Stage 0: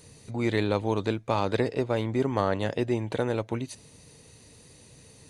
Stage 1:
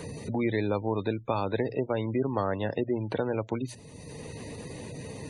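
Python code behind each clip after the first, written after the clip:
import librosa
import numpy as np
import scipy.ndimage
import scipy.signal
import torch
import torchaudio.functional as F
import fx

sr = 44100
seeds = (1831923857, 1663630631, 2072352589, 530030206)

y = fx.spec_gate(x, sr, threshold_db=-25, keep='strong')
y = fx.hum_notches(y, sr, base_hz=60, count=2)
y = fx.band_squash(y, sr, depth_pct=70)
y = F.gain(torch.from_numpy(y), -2.0).numpy()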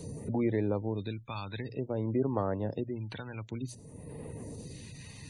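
y = fx.phaser_stages(x, sr, stages=2, low_hz=440.0, high_hz=4800.0, hz=0.54, feedback_pct=45)
y = F.gain(torch.from_numpy(y), -3.5).numpy()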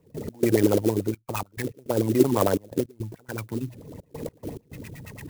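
y = fx.filter_lfo_lowpass(x, sr, shape='sine', hz=8.9, low_hz=310.0, high_hz=2600.0, q=4.7)
y = fx.step_gate(y, sr, bpm=105, pattern='.x.xxxxx.x', floor_db=-24.0, edge_ms=4.5)
y = fx.clock_jitter(y, sr, seeds[0], jitter_ms=0.056)
y = F.gain(torch.from_numpy(y), 5.5).numpy()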